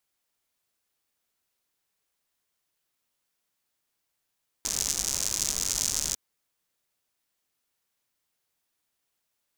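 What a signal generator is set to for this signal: rain from filtered ticks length 1.50 s, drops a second 130, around 6.4 kHz, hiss -11.5 dB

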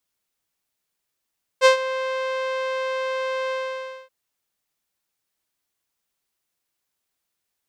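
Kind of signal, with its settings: synth note saw C5 12 dB/octave, low-pass 3.3 kHz, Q 0.74, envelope 1 oct, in 0.23 s, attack 45 ms, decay 0.11 s, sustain -14.5 dB, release 0.58 s, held 1.90 s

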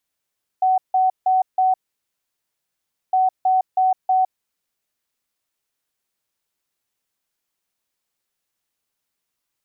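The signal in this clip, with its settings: beep pattern sine 750 Hz, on 0.16 s, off 0.16 s, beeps 4, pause 1.39 s, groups 2, -13.5 dBFS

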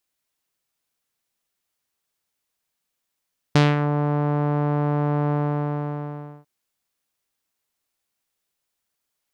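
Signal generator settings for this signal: synth note saw D3 12 dB/octave, low-pass 1 kHz, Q 1.2, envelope 2.5 oct, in 0.33 s, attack 5.9 ms, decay 0.20 s, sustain -8 dB, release 1.13 s, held 1.77 s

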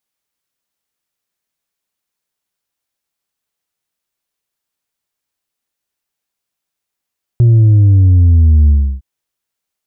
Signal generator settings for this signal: sub drop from 120 Hz, over 1.61 s, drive 3 dB, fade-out 0.32 s, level -5 dB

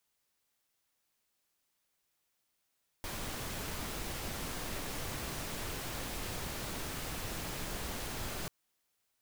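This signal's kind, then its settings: noise pink, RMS -39.5 dBFS 5.44 s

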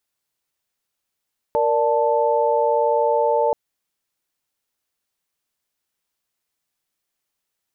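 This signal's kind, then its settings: chord A#4/D5/A5 sine, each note -20 dBFS 1.98 s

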